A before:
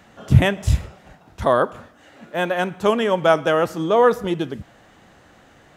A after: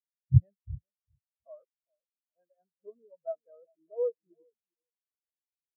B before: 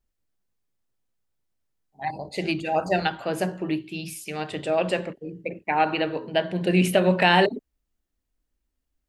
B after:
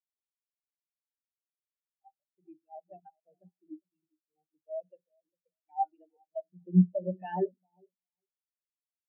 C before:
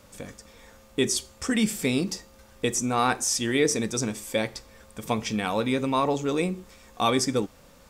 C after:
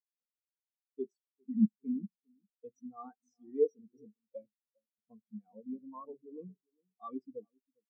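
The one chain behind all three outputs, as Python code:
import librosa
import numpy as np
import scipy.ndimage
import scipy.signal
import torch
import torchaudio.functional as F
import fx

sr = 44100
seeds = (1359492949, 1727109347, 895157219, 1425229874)

y = fx.echo_wet_lowpass(x, sr, ms=403, feedback_pct=40, hz=1100.0, wet_db=-8.5)
y = fx.spectral_expand(y, sr, expansion=4.0)
y = y * librosa.db_to_amplitude(-6.5)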